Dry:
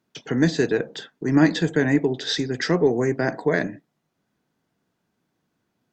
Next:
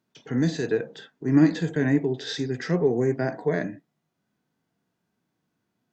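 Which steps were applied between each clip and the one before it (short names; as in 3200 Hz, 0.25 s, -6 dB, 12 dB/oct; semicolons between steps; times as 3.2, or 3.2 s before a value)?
harmonic-percussive split percussive -12 dB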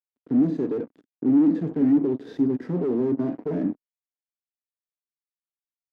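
fuzz box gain 30 dB, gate -38 dBFS; band-pass 270 Hz, Q 3.2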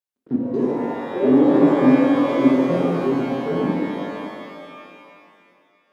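echoes that change speed 0.268 s, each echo +6 st, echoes 2, each echo -6 dB; step gate "xx.x.xxxxxx.xx" 84 bpm; shimmer reverb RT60 2.5 s, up +12 st, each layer -8 dB, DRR -3 dB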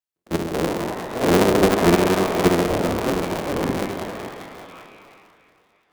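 cycle switcher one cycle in 3, inverted; gain -2 dB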